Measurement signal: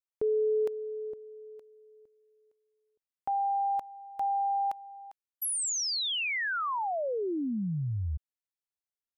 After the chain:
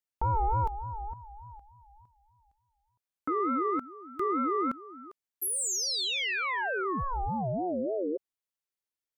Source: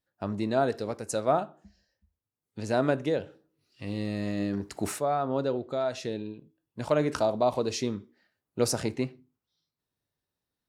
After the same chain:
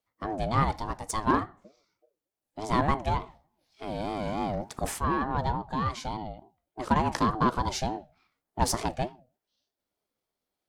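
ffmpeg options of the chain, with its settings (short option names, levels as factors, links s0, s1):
-af "aeval=exprs='0.299*(cos(1*acos(clip(val(0)/0.299,-1,1)))-cos(1*PI/2))+0.00188*(cos(5*acos(clip(val(0)/0.299,-1,1)))-cos(5*PI/2))+0.0119*(cos(8*acos(clip(val(0)/0.299,-1,1)))-cos(8*PI/2))':c=same,aeval=exprs='val(0)*sin(2*PI*460*n/s+460*0.2/3.4*sin(2*PI*3.4*n/s))':c=same,volume=1.41"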